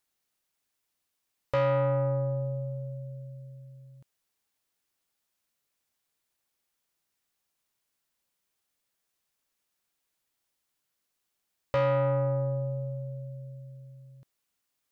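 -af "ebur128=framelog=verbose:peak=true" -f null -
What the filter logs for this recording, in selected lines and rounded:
Integrated loudness:
  I:         -29.6 LUFS
  Threshold: -41.6 LUFS
Loudness range:
  LRA:        12.2 LU
  Threshold: -53.6 LUFS
  LRA low:   -44.0 LUFS
  LRA high:  -31.8 LUFS
True peak:
  Peak:      -21.9 dBFS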